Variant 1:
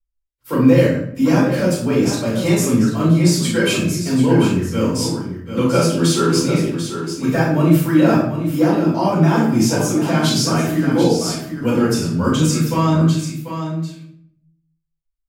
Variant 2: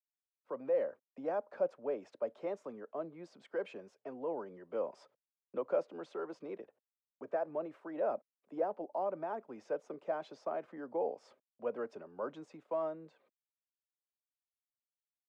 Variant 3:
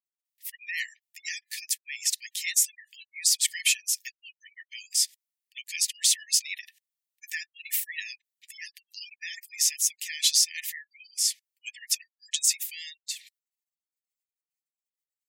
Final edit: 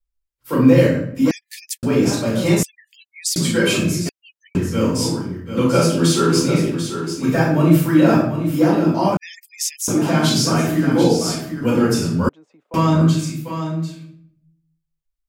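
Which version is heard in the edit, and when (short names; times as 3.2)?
1
1.31–1.83 from 3
2.63–3.36 from 3
4.09–4.55 from 3
9.17–9.88 from 3
12.29–12.74 from 2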